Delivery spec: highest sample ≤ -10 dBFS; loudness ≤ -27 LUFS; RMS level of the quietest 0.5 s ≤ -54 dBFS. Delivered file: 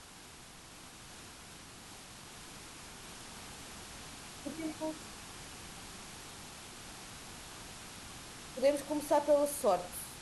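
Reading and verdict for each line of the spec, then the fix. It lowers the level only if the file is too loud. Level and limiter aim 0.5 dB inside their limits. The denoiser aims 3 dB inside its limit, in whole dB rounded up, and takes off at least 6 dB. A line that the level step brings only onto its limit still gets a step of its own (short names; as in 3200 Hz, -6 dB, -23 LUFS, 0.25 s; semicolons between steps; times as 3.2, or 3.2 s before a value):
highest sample -18.0 dBFS: OK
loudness -38.0 LUFS: OK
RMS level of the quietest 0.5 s -53 dBFS: fail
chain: denoiser 6 dB, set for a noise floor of -53 dBFS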